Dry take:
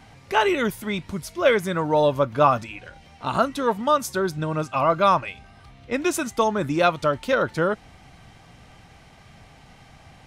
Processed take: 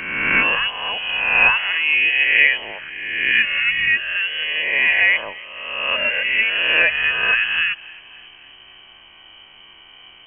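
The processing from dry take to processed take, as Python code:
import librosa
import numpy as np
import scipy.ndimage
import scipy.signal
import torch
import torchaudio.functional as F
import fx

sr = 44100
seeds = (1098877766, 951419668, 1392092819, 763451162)

y = fx.spec_swells(x, sr, rise_s=1.41)
y = fx.freq_invert(y, sr, carrier_hz=3100)
y = fx.echo_thinned(y, sr, ms=274, feedback_pct=59, hz=820.0, wet_db=-22.0)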